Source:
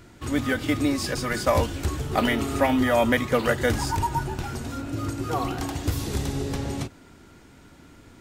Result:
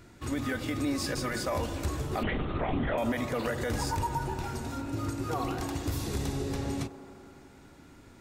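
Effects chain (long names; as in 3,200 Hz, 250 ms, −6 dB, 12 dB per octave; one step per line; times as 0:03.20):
notch filter 3,100 Hz, Q 19
0:02.23–0:02.98: linear-prediction vocoder at 8 kHz whisper
brickwall limiter −18 dBFS, peak gain reduction 10.5 dB
delay with a band-pass on its return 87 ms, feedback 83%, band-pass 570 Hz, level −12.5 dB
level −4 dB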